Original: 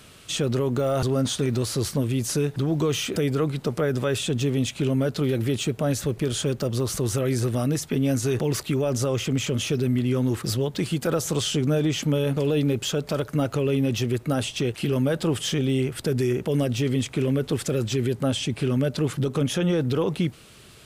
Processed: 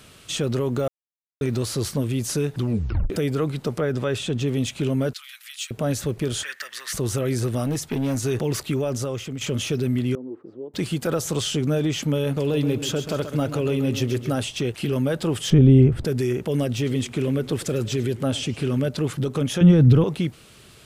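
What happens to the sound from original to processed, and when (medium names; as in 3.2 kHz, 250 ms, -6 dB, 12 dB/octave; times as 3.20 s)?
0.88–1.41 s: mute
2.58 s: tape stop 0.52 s
3.78–4.48 s: treble shelf 8.3 kHz -11 dB
5.13–5.71 s: Bessel high-pass 2.2 kHz, order 8
6.43–6.93 s: resonant high-pass 1.8 kHz, resonance Q 13
7.64–8.25 s: overload inside the chain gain 20 dB
8.77–9.41 s: fade out, to -9.5 dB
10.15–10.74 s: ladder band-pass 390 Hz, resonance 45%
12.38–14.38 s: feedback delay 133 ms, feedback 46%, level -10 dB
15.50–16.05 s: tilt EQ -4.5 dB/octave
16.70–18.89 s: modulated delay 102 ms, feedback 48%, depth 199 cents, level -19 dB
19.61–20.04 s: tone controls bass +15 dB, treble -4 dB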